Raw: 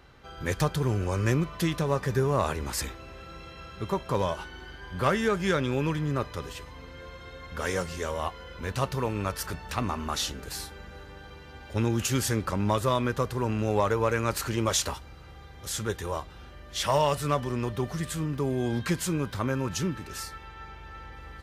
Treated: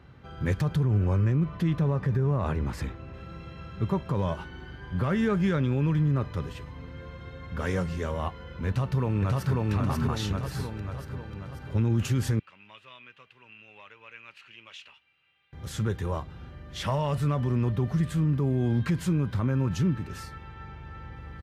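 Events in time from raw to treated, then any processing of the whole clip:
0.83–3.14 high shelf 4100 Hz -8.5 dB
8.68–9.71 echo throw 0.54 s, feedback 55%, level -1 dB
12.39–15.53 band-pass 2700 Hz, Q 5.9
whole clip: HPF 96 Hz 12 dB/oct; tone controls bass +13 dB, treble -9 dB; limiter -15.5 dBFS; gain -2 dB

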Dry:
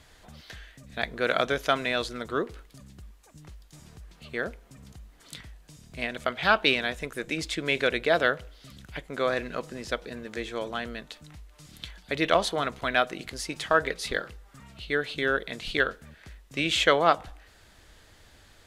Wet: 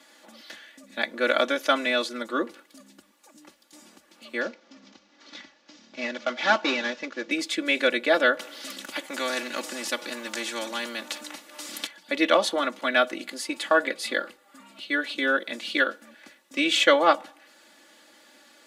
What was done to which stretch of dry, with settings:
4.41–7.31 CVSD 32 kbps
8.39–11.87 spectral compressor 2:1
13.23–14.76 bell 5700 Hz -6.5 dB 0.23 oct
whole clip: HPF 220 Hz 24 dB/oct; comb 3.5 ms, depth 97%

